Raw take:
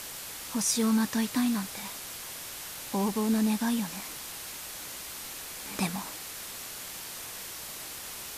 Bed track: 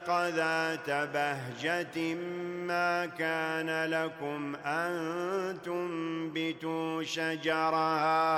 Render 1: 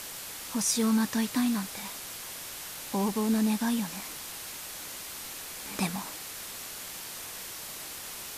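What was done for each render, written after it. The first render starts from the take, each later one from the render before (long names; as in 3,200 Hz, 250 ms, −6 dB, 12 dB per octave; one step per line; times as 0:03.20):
hum removal 60 Hz, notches 2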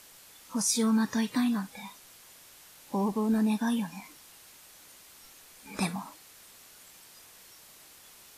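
noise reduction from a noise print 13 dB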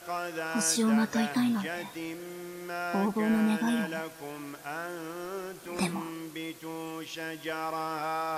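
mix in bed track −5 dB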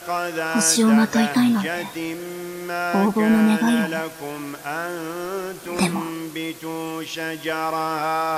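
level +9.5 dB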